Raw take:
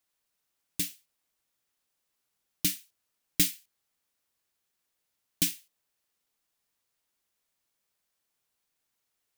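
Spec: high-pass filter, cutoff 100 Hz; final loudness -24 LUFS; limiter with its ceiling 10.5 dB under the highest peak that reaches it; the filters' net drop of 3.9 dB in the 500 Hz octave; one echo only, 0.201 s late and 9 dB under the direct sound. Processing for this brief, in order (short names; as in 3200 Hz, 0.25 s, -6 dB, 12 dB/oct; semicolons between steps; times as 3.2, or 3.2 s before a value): HPF 100 Hz; bell 500 Hz -6.5 dB; limiter -19 dBFS; echo 0.201 s -9 dB; gain +12 dB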